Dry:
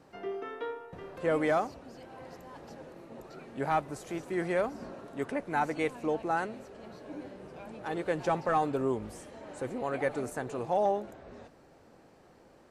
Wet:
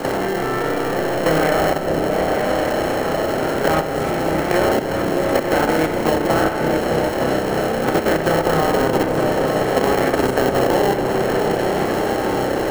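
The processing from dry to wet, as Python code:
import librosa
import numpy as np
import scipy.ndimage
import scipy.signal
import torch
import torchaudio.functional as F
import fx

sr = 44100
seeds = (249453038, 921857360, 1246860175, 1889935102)

p1 = fx.bin_compress(x, sr, power=0.4)
p2 = fx.rev_spring(p1, sr, rt60_s=1.3, pass_ms=(31,), chirp_ms=50, drr_db=-1.5)
p3 = fx.sample_hold(p2, sr, seeds[0], rate_hz=1200.0, jitter_pct=0)
p4 = p2 + (p3 * librosa.db_to_amplitude(-4.0))
p5 = fx.level_steps(p4, sr, step_db=10)
p6 = p5 + fx.echo_opening(p5, sr, ms=305, hz=200, octaves=2, feedback_pct=70, wet_db=-3, dry=0)
p7 = fx.band_squash(p6, sr, depth_pct=70)
y = p7 * librosa.db_to_amplitude(3.5)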